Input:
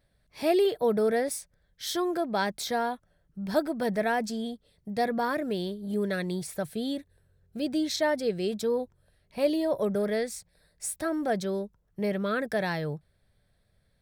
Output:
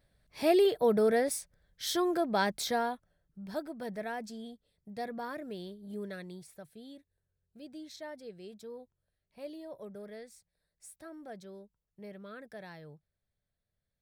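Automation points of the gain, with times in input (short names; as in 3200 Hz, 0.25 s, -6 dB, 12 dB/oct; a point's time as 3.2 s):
2.66 s -1 dB
3.55 s -11 dB
6.03 s -11 dB
6.68 s -18 dB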